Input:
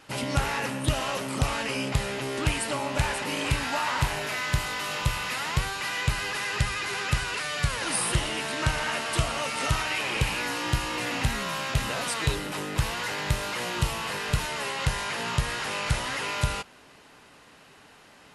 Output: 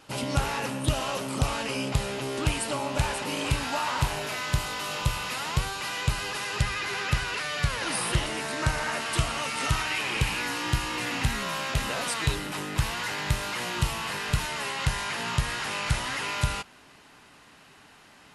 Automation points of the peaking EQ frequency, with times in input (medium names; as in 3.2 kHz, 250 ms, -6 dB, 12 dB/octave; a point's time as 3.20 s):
peaking EQ -5 dB 0.61 oct
1.9 kHz
from 6.62 s 8.7 kHz
from 8.26 s 3 kHz
from 9.00 s 570 Hz
from 11.42 s 110 Hz
from 12.14 s 500 Hz